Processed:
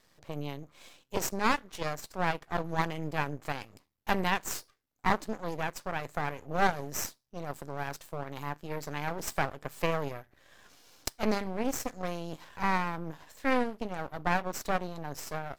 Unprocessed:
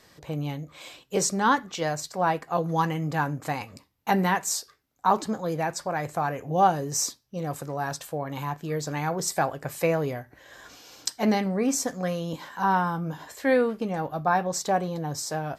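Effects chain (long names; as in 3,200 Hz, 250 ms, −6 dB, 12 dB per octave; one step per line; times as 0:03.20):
harmonic generator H 3 −17 dB, 6 −20 dB, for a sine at −5.5 dBFS
half-wave rectification
level −1.5 dB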